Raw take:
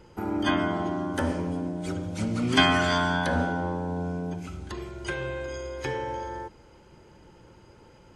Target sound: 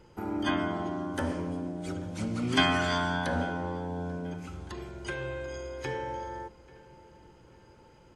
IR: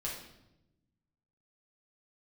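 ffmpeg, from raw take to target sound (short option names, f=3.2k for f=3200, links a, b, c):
-filter_complex "[0:a]asplit=2[a][b];[b]adelay=838,lowpass=f=2.8k:p=1,volume=-21dB,asplit=2[c][d];[d]adelay=838,lowpass=f=2.8k:p=1,volume=0.48,asplit=2[e][f];[f]adelay=838,lowpass=f=2.8k:p=1,volume=0.48[g];[a][c][e][g]amix=inputs=4:normalize=0,asplit=2[h][i];[1:a]atrim=start_sample=2205[j];[i][j]afir=irnorm=-1:irlink=0,volume=-21dB[k];[h][k]amix=inputs=2:normalize=0,volume=-4.5dB"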